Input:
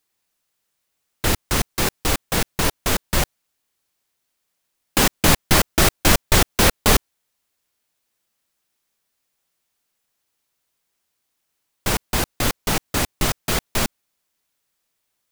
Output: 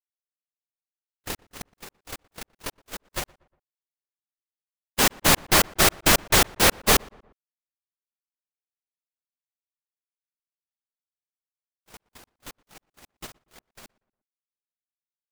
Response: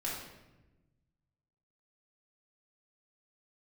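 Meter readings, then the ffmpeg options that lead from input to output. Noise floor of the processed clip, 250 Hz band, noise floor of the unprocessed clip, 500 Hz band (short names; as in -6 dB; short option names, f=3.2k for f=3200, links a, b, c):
under -85 dBFS, -7.5 dB, -75 dBFS, -4.5 dB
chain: -filter_complex "[0:a]agate=range=-52dB:threshold=-15dB:ratio=16:detection=peak,lowshelf=f=220:g=-9,asplit=2[a][b];[b]adelay=119,lowpass=f=1.7k:p=1,volume=-24dB,asplit=2[c][d];[d]adelay=119,lowpass=f=1.7k:p=1,volume=0.47,asplit=2[e][f];[f]adelay=119,lowpass=f=1.7k:p=1,volume=0.47[g];[a][c][e][g]amix=inputs=4:normalize=0"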